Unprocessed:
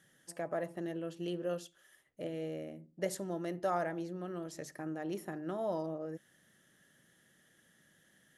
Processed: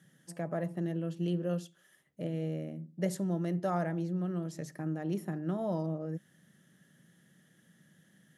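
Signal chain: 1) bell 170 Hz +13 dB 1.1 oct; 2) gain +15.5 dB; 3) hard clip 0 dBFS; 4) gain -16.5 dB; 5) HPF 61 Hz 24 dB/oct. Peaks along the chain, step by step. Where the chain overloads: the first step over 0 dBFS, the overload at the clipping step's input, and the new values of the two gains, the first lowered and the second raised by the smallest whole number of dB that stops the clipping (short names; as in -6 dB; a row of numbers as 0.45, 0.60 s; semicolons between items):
-19.0, -3.5, -3.5, -20.0, -19.0 dBFS; no overload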